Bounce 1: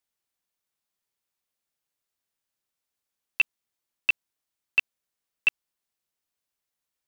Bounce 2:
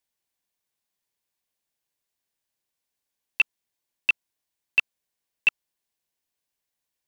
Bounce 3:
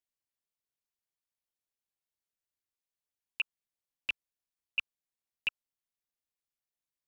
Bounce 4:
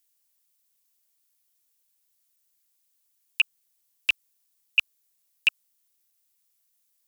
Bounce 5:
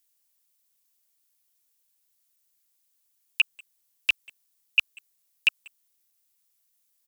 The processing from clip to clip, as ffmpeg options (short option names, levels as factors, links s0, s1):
-af "bandreject=f=1300:w=6.5,volume=1.19"
-af "tremolo=f=240:d=1,lowshelf=f=110:g=6.5,volume=0.398"
-af "crystalizer=i=4.5:c=0,volume=1.68"
-filter_complex "[0:a]asplit=2[s0][s1];[s1]adelay=190,highpass=300,lowpass=3400,asoftclip=type=hard:threshold=0.141,volume=0.0794[s2];[s0][s2]amix=inputs=2:normalize=0"